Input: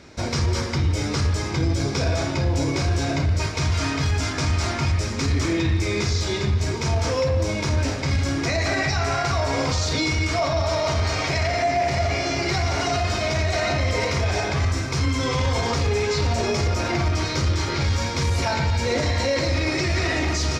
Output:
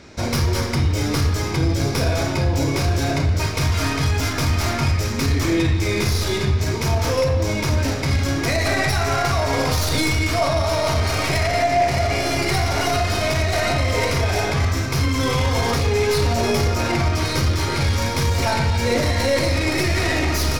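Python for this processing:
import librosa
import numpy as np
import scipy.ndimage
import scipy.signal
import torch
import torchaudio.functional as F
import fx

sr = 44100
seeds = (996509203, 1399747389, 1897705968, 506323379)

y = fx.tracing_dist(x, sr, depth_ms=0.067)
y = fx.rev_schroeder(y, sr, rt60_s=0.39, comb_ms=30, drr_db=10.0)
y = y * 10.0 ** (2.5 / 20.0)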